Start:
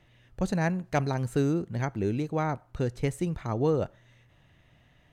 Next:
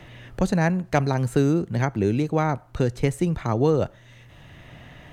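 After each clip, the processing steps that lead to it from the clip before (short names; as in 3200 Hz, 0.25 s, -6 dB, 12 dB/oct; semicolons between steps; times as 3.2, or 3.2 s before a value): three-band squash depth 40%; gain +6 dB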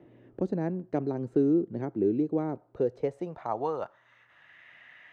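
dynamic EQ 5100 Hz, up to +6 dB, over -51 dBFS, Q 1.1; band-pass sweep 340 Hz -> 1900 Hz, 2.47–4.62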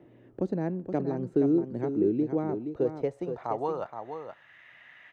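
echo 0.472 s -8 dB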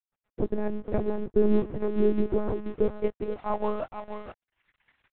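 crossover distortion -47.5 dBFS; monotone LPC vocoder at 8 kHz 210 Hz; gain +3.5 dB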